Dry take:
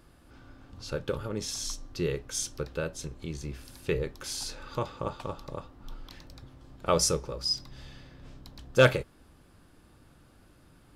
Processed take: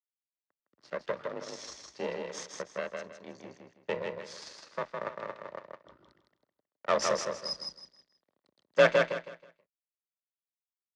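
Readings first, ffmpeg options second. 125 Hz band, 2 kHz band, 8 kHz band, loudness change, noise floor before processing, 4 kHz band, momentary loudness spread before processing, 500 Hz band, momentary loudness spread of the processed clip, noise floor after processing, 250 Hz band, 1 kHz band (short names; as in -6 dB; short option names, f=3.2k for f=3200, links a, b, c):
-14.0 dB, 0.0 dB, -9.5 dB, -2.0 dB, -59 dBFS, -5.5 dB, 24 LU, -0.5 dB, 20 LU, under -85 dBFS, -7.0 dB, +0.5 dB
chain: -filter_complex "[0:a]afftdn=nr=12:nf=-50,aeval=exprs='sgn(val(0))*max(abs(val(0))-0.00891,0)':c=same,aeval=exprs='0.282*(cos(1*acos(clip(val(0)/0.282,-1,1)))-cos(1*PI/2))+0.0447*(cos(3*acos(clip(val(0)/0.282,-1,1)))-cos(3*PI/2))+0.0282*(cos(6*acos(clip(val(0)/0.282,-1,1)))-cos(6*PI/2))':c=same,asoftclip=type=tanh:threshold=-17dB,afreqshift=39,highpass=230,equalizer=f=580:t=q:w=4:g=6,equalizer=f=1.1k:t=q:w=4:g=5,equalizer=f=1.9k:t=q:w=4:g=8,lowpass=f=6.3k:w=0.5412,lowpass=f=6.3k:w=1.3066,asplit=2[a][b];[b]aecho=0:1:160|320|480|640:0.631|0.177|0.0495|0.0139[c];[a][c]amix=inputs=2:normalize=0"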